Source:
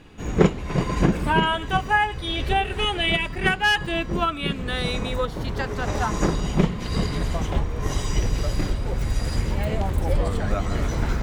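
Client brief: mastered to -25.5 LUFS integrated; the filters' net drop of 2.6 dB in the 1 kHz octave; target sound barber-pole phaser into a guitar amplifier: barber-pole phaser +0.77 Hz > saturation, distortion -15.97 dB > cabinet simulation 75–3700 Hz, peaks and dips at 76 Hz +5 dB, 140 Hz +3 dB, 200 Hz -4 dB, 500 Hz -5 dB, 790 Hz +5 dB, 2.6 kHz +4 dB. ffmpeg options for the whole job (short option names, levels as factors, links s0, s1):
-filter_complex "[0:a]equalizer=f=1000:t=o:g=-7.5,asplit=2[s0][s1];[s1]afreqshift=0.77[s2];[s0][s2]amix=inputs=2:normalize=1,asoftclip=threshold=0.133,highpass=75,equalizer=f=76:t=q:w=4:g=5,equalizer=f=140:t=q:w=4:g=3,equalizer=f=200:t=q:w=4:g=-4,equalizer=f=500:t=q:w=4:g=-5,equalizer=f=790:t=q:w=4:g=5,equalizer=f=2600:t=q:w=4:g=4,lowpass=f=3700:w=0.5412,lowpass=f=3700:w=1.3066,volume=1.58"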